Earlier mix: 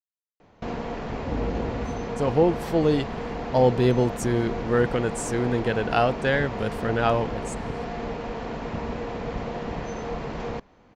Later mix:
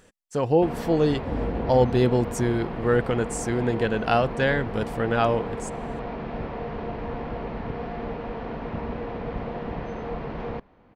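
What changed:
speech: entry -1.85 s; first sound: add air absorption 260 m

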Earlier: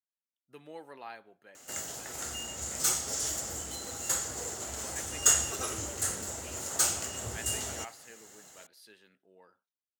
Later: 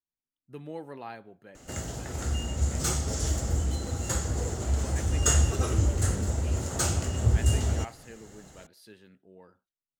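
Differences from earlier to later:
background: add high shelf 9700 Hz -11 dB; master: remove HPF 900 Hz 6 dB/oct

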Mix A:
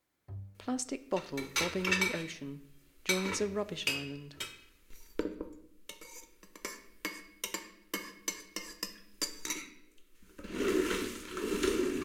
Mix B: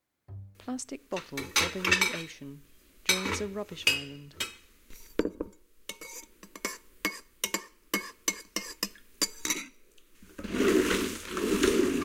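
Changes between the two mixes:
second sound +11.0 dB; reverb: off

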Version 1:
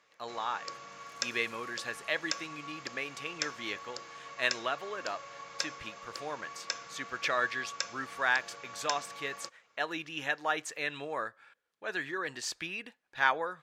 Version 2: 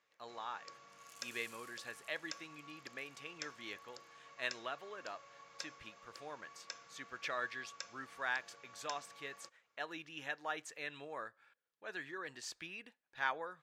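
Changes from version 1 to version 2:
speech -9.5 dB; first sound -12.0 dB; second sound +4.5 dB

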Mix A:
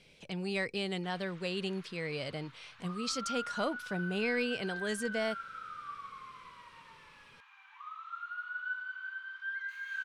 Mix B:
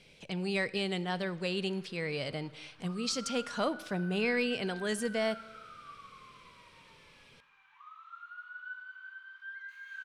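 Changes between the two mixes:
background -7.5 dB; reverb: on, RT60 1.2 s

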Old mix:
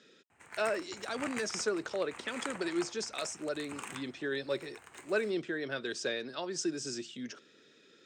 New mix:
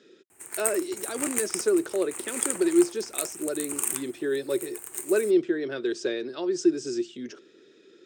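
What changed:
background: remove air absorption 190 m; master: add bell 360 Hz +14.5 dB 0.6 oct

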